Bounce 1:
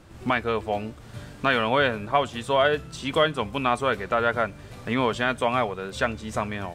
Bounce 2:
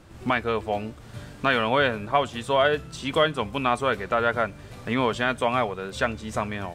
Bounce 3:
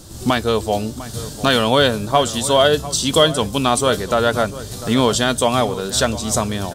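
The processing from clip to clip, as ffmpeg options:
-af anull
-filter_complex "[0:a]aexciter=amount=11.2:drive=4:freq=3.5k,tiltshelf=f=970:g=5,asplit=2[a][b];[b]adelay=699.7,volume=-15dB,highshelf=f=4k:g=-15.7[c];[a][c]amix=inputs=2:normalize=0,volume=5dB"

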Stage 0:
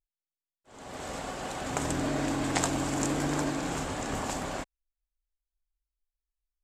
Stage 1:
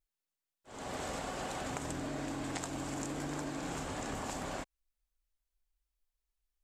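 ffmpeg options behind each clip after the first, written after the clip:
-af "acompressor=threshold=-38dB:ratio=12,volume=2.5dB"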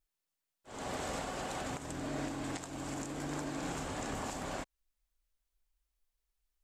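-af "alimiter=level_in=6dB:limit=-24dB:level=0:latency=1:release=433,volume=-6dB,volume=2dB"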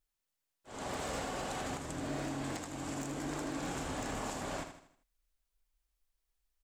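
-af "aeval=exprs='0.0282*(abs(mod(val(0)/0.0282+3,4)-2)-1)':c=same,aecho=1:1:79|158|237|316|395:0.376|0.162|0.0695|0.0299|0.0128"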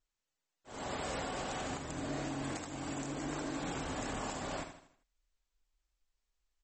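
-ar 44100 -c:a libmp3lame -b:a 32k

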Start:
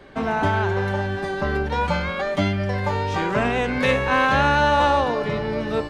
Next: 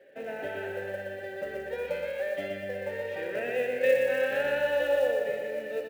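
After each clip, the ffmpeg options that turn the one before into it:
-filter_complex "[0:a]asplit=3[a][b][c];[a]bandpass=f=530:t=q:w=8,volume=0dB[d];[b]bandpass=f=1.84k:t=q:w=8,volume=-6dB[e];[c]bandpass=f=2.48k:t=q:w=8,volume=-9dB[f];[d][e][f]amix=inputs=3:normalize=0,acrusher=bits=7:mode=log:mix=0:aa=0.000001,aecho=1:1:122|244|366|488|610|732|854:0.596|0.328|0.18|0.0991|0.0545|0.03|0.0165"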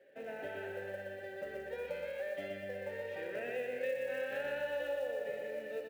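-af "acompressor=threshold=-28dB:ratio=3,volume=-7dB"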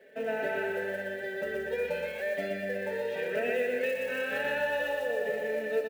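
-af "aecho=1:1:4.6:0.78,volume=7.5dB"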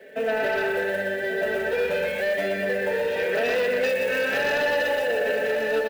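-filter_complex "[0:a]acrossover=split=360|1100|3200[a][b][c][d];[a]alimiter=level_in=16.5dB:limit=-24dB:level=0:latency=1,volume=-16.5dB[e];[e][b][c][d]amix=inputs=4:normalize=0,aeval=exprs='0.106*sin(PI/2*2*val(0)/0.106)':c=same,aecho=1:1:1136:0.316"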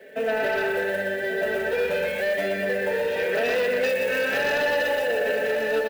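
-af "highshelf=f=10k:g=3"

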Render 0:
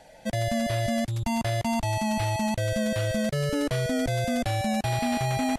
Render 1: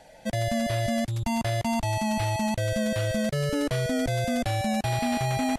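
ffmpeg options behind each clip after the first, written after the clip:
-af anull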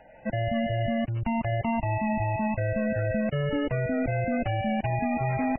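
-af "aeval=exprs='0.168*(cos(1*acos(clip(val(0)/0.168,-1,1)))-cos(1*PI/2))+0.00335*(cos(4*acos(clip(val(0)/0.168,-1,1)))-cos(4*PI/2))':c=same" -ar 16000 -c:a libmp3lame -b:a 8k

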